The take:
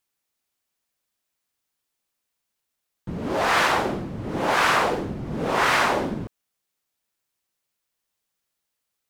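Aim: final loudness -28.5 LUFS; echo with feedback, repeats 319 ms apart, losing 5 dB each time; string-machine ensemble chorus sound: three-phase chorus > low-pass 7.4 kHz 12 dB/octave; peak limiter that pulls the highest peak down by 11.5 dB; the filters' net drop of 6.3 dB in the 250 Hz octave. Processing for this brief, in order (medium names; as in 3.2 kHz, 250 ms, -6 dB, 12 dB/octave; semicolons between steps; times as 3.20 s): peaking EQ 250 Hz -9 dB; peak limiter -19 dBFS; feedback delay 319 ms, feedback 56%, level -5 dB; three-phase chorus; low-pass 7.4 kHz 12 dB/octave; trim +3 dB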